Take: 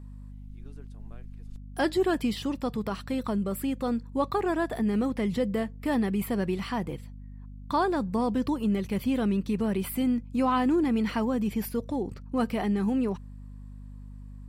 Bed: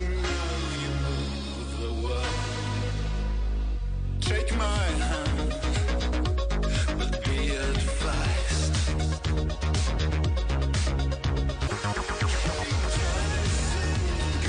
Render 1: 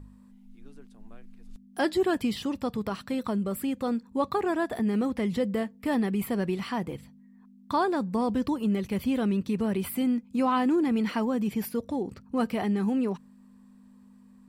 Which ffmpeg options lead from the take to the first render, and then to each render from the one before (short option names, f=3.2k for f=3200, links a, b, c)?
-af "bandreject=f=50:t=h:w=4,bandreject=f=100:t=h:w=4,bandreject=f=150:t=h:w=4"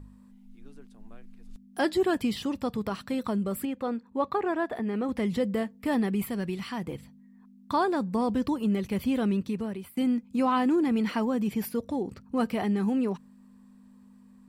-filter_complex "[0:a]asettb=1/sr,asplit=3[a][b][c];[a]atrim=end=3.654[d];[b]atrim=start=3.65:end=5.09,asetpts=PTS-STARTPTS,afade=t=in:d=0.004:c=qsin,afade=t=out:st=1.436:d=0.004:c=qsin,bass=f=250:g=-7,treble=f=4k:g=-12[e];[c]atrim=start=5.086[f];[d][e]acrossfade=d=0.004:c1=hsin:c2=qsin[g];[g][f]acrossfade=d=0.004:c1=qsin:c2=hsin,asettb=1/sr,asplit=3[h][i][j];[h]atrim=end=6.254[k];[i]atrim=start=6.25:end=6.87,asetpts=PTS-STARTPTS,afade=t=in:d=0.004:c=qsin,afade=t=out:st=0.616:d=0.004:c=qsin,equalizer=f=600:t=o:w=2.7:g=-6[l];[j]atrim=start=6.866[m];[k][l]acrossfade=d=0.004:c1=hsin:c2=qsin[n];[n][m]acrossfade=d=0.004:c1=qsin:c2=hsin,asplit=2[o][p];[o]atrim=end=9.97,asetpts=PTS-STARTPTS,afade=t=out:st=9.34:d=0.63:silence=0.0891251[q];[p]atrim=start=9.97,asetpts=PTS-STARTPTS,afade=t=in:d=0.004:c=hsin:silence=0.0891251[r];[q][r]concat=n=2:v=0:a=1"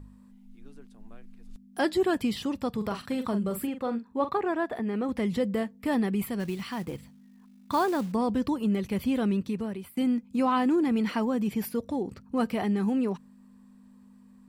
-filter_complex "[0:a]asettb=1/sr,asplit=3[a][b][c];[a]atrim=end=2.774[d];[b]atrim=start=2.77:end=4.39,asetpts=PTS-STARTPTS,afade=t=in:d=0.004:c=qsin,afade=t=out:st=1.616:d=0.004:c=qsin,asplit=2[e][f];[f]adelay=43,volume=-9dB[g];[e][g]amix=inputs=2:normalize=0,atrim=end_sample=71442[h];[c]atrim=start=4.386[i];[d][h]acrossfade=d=0.004:c1=hsin:c2=qsin[j];[j][i]acrossfade=d=0.004:c1=qsin:c2=hsin,asplit=3[k][l][m];[k]afade=t=out:st=6.39:d=0.02[n];[l]acrusher=bits=5:mode=log:mix=0:aa=0.000001,afade=t=in:st=6.39:d=0.02,afade=t=out:st=8.11:d=0.02[o];[m]afade=t=in:st=8.11:d=0.02[p];[n][o][p]amix=inputs=3:normalize=0"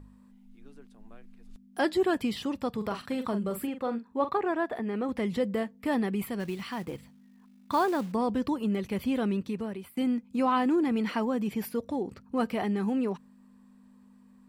-af "bass=f=250:g=-4,treble=f=4k:g=-3"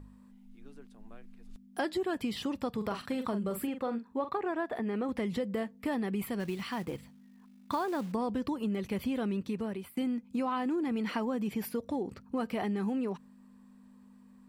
-af "acompressor=threshold=-29dB:ratio=6"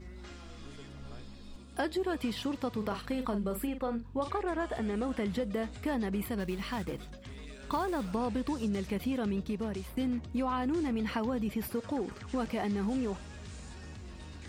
-filter_complex "[1:a]volume=-20dB[a];[0:a][a]amix=inputs=2:normalize=0"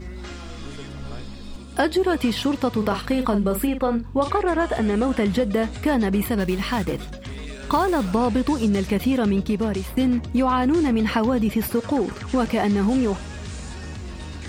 -af "volume=12dB"